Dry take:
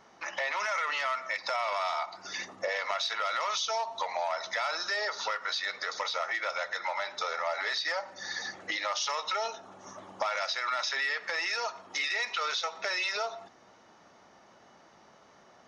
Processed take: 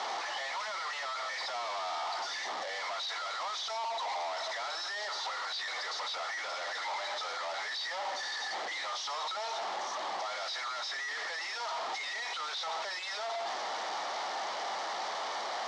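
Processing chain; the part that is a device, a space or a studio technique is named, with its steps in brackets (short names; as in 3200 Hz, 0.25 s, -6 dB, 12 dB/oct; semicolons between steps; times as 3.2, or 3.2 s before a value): home computer beeper (infinite clipping; speaker cabinet 710–5300 Hz, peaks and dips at 780 Hz +5 dB, 1500 Hz -5 dB, 2600 Hz -9 dB)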